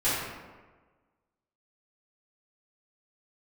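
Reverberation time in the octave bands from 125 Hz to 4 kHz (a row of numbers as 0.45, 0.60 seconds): 1.3, 1.4, 1.4, 1.3, 1.1, 0.75 seconds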